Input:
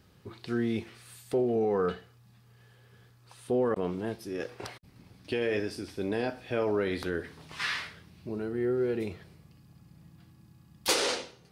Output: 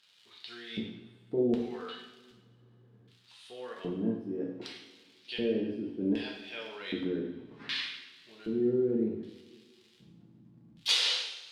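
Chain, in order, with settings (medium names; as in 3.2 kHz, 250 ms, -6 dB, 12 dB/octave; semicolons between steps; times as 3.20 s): crackle 130 per s -43 dBFS; LFO band-pass square 0.65 Hz 250–3400 Hz; two-slope reverb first 0.79 s, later 2.3 s, from -18 dB, DRR -1.5 dB; trim +3 dB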